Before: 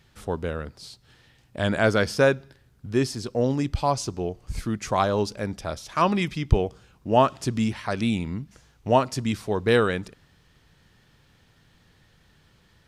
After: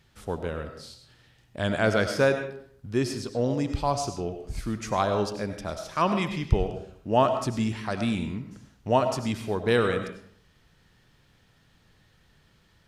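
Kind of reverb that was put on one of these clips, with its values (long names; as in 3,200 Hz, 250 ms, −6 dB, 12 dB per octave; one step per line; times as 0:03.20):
comb and all-pass reverb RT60 0.61 s, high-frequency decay 0.65×, pre-delay 55 ms, DRR 7 dB
level −3 dB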